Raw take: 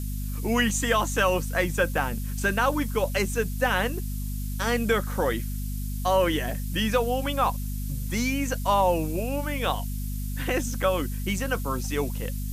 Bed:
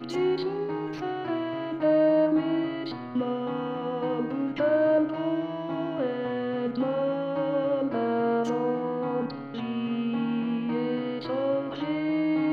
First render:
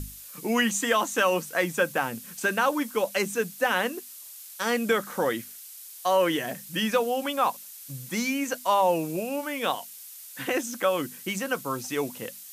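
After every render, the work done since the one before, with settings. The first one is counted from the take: notches 50/100/150/200/250 Hz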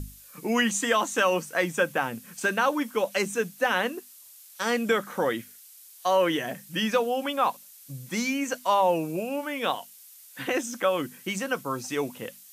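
noise print and reduce 6 dB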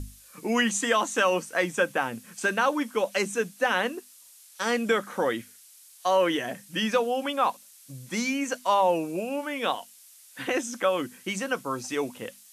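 LPF 12000 Hz 24 dB/oct; bell 150 Hz -8.5 dB 0.25 oct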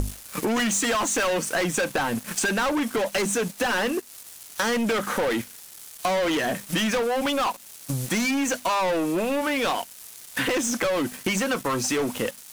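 sample leveller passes 5; compressor 5:1, threshold -24 dBFS, peak gain reduction 10 dB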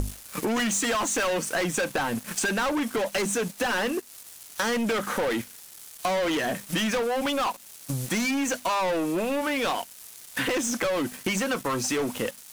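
gain -2 dB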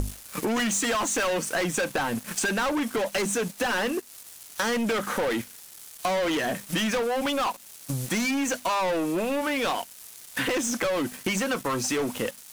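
nothing audible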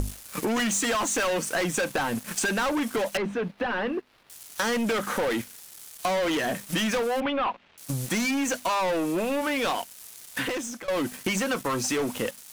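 3.17–4.3 air absorption 370 m; 7.2–7.78 LPF 3000 Hz 24 dB/oct; 10.29–10.88 fade out, to -16.5 dB

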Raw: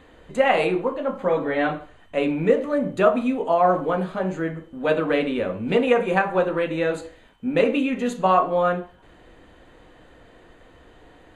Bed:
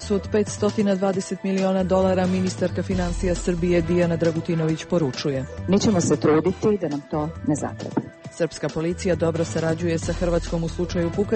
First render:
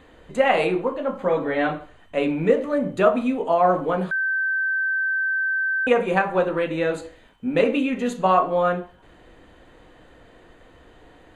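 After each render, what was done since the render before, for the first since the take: 4.11–5.87 bleep 1550 Hz -20 dBFS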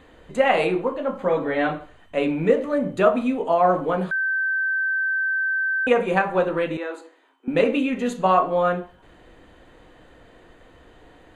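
6.77–7.48 rippled Chebyshev high-pass 260 Hz, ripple 9 dB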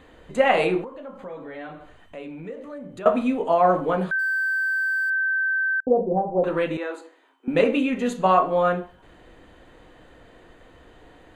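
0.84–3.06 compressor 2.5:1, threshold -41 dBFS; 4.19–5.1 G.711 law mismatch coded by A; 5.8–6.44 elliptic low-pass 770 Hz, stop band 70 dB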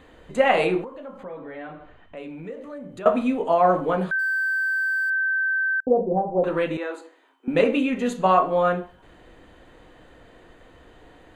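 1.23–2.17 LPF 3000 Hz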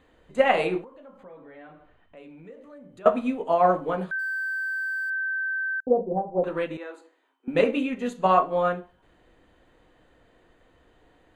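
upward expander 1.5:1, over -32 dBFS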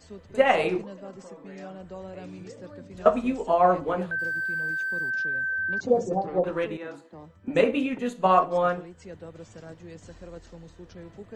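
add bed -21 dB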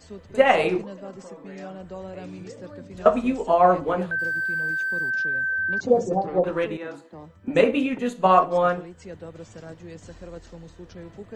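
gain +3 dB; limiter -3 dBFS, peak gain reduction 1.5 dB

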